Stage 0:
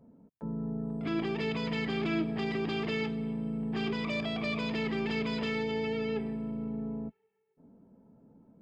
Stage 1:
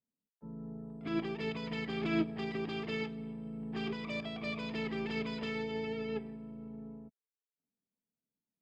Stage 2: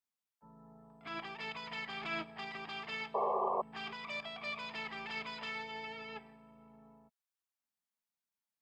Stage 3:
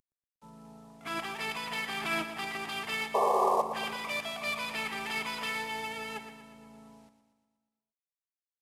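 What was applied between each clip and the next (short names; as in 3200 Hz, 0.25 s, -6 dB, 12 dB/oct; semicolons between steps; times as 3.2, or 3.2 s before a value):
upward expander 2.5:1, over -54 dBFS; gain +1.5 dB
resonant low shelf 570 Hz -13.5 dB, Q 1.5; painted sound noise, 3.14–3.62, 370–1200 Hz -33 dBFS
CVSD 64 kbps; feedback echo 0.119 s, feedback 58%, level -11 dB; gain +7 dB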